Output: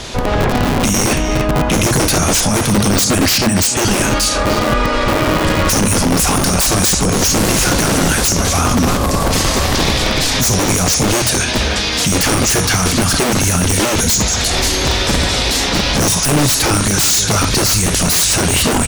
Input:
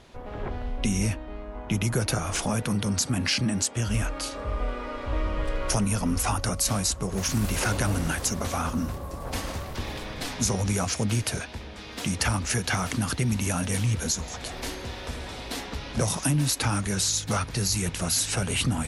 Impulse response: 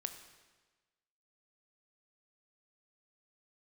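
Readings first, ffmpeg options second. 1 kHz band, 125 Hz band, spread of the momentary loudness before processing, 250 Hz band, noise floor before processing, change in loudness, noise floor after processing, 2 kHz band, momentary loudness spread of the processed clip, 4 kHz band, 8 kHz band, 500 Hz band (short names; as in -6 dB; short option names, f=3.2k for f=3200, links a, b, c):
+15.5 dB, +10.5 dB, 10 LU, +13.5 dB, -39 dBFS, +14.0 dB, -17 dBFS, +15.0 dB, 3 LU, +16.0 dB, +15.0 dB, +16.0 dB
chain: -filter_complex "[0:a]equalizer=f=6.2k:w=0.56:g=10[a];[1:a]atrim=start_sample=2205,afade=t=out:st=0.13:d=0.01,atrim=end_sample=6174[b];[a][b]afir=irnorm=-1:irlink=0,asplit=2[c][d];[d]acompressor=threshold=-33dB:ratio=6,volume=1dB[e];[c][e]amix=inputs=2:normalize=0,aeval=exprs='0.668*sin(PI/2*5.01*val(0)/0.668)':c=same,asplit=2[f][g];[g]adelay=300,highpass=300,lowpass=3.4k,asoftclip=type=hard:threshold=-12dB,volume=-7dB[h];[f][h]amix=inputs=2:normalize=0,acrossover=split=150[i][j];[i]aeval=exprs='(mod(3.76*val(0)+1,2)-1)/3.76':c=same[k];[j]alimiter=limit=-8dB:level=0:latency=1[l];[k][l]amix=inputs=2:normalize=0"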